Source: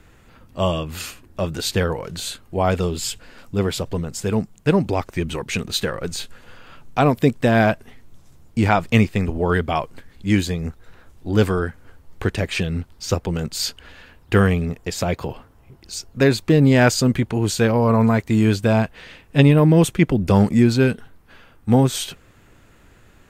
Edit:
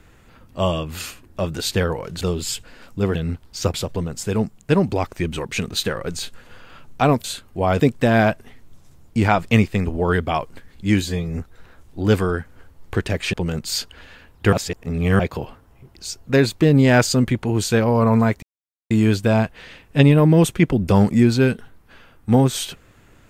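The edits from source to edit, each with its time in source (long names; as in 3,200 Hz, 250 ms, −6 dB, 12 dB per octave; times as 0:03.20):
0:02.21–0:02.77: move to 0:07.21
0:10.43–0:10.68: time-stretch 1.5×
0:12.62–0:13.21: move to 0:03.71
0:14.40–0:15.07: reverse
0:18.30: splice in silence 0.48 s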